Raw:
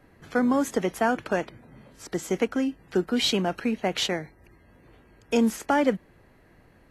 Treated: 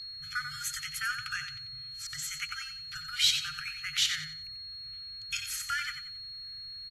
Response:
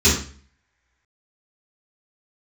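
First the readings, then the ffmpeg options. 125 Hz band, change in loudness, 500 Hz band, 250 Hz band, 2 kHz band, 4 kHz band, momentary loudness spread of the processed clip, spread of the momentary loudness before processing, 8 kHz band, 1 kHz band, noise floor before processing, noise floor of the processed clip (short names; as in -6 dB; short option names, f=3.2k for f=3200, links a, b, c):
-14.5 dB, -7.0 dB, under -40 dB, under -35 dB, -1.0 dB, +2.0 dB, 14 LU, 11 LU, +2.5 dB, -12.5 dB, -58 dBFS, -44 dBFS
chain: -af "afftfilt=real='re*(1-between(b*sr/4096,160,1200))':imag='im*(1-between(b*sr/4096,160,1200))':win_size=4096:overlap=0.75,highshelf=f=2.8k:g=6,aeval=exprs='val(0)+0.0158*sin(2*PI*4300*n/s)':c=same,aecho=1:1:91|182|273|364:0.376|0.117|0.0361|0.0112,volume=-3.5dB"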